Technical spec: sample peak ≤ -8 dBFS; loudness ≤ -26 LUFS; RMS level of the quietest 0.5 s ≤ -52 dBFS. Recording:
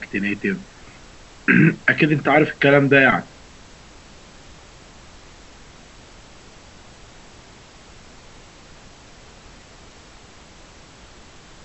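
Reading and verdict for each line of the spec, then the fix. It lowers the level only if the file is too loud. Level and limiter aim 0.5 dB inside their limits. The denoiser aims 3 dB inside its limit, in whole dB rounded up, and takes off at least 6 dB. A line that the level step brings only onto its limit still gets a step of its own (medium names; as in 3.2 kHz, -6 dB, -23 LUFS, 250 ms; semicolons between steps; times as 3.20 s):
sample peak -2.0 dBFS: fail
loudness -17.0 LUFS: fail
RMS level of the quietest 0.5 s -45 dBFS: fail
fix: trim -9.5 dB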